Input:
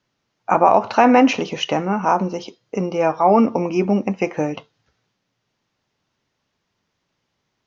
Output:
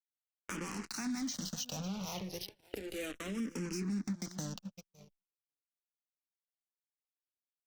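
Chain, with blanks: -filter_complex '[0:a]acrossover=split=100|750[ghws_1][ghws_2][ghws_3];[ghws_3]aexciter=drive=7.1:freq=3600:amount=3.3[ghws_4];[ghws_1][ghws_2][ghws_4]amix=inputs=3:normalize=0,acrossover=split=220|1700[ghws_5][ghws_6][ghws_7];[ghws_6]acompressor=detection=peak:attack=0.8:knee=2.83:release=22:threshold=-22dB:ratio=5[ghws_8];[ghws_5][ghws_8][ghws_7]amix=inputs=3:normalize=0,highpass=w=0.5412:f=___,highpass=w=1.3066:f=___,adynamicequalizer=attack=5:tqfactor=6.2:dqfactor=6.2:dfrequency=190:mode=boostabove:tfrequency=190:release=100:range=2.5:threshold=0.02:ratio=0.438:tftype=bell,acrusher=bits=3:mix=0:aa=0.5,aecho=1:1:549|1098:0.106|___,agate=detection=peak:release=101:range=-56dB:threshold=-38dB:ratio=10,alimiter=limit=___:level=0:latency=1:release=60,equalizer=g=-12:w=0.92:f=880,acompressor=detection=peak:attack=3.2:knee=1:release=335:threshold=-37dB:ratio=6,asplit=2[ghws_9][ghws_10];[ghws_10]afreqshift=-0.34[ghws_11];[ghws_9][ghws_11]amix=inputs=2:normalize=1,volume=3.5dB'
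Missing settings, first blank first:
46, 46, 0.0318, -13dB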